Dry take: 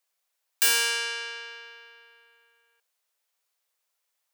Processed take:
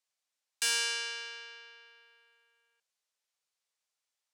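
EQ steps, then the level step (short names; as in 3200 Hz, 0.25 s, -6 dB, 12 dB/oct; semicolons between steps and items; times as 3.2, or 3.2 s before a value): LPF 7100 Hz 12 dB/oct; high shelf 3700 Hz +8 dB; -9.0 dB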